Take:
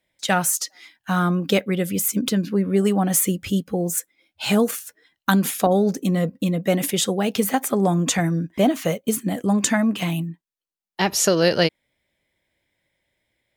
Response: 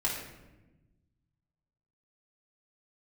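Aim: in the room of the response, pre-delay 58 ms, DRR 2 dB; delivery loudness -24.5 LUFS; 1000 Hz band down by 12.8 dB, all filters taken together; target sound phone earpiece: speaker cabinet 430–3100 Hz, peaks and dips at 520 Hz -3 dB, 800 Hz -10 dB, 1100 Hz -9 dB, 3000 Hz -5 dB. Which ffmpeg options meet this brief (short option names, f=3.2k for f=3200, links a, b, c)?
-filter_complex "[0:a]equalizer=f=1k:t=o:g=-8,asplit=2[a][b];[1:a]atrim=start_sample=2205,adelay=58[c];[b][c]afir=irnorm=-1:irlink=0,volume=-9dB[d];[a][d]amix=inputs=2:normalize=0,highpass=430,equalizer=f=520:t=q:w=4:g=-3,equalizer=f=800:t=q:w=4:g=-10,equalizer=f=1.1k:t=q:w=4:g=-9,equalizer=f=3k:t=q:w=4:g=-5,lowpass=f=3.1k:w=0.5412,lowpass=f=3.1k:w=1.3066,volume=5dB"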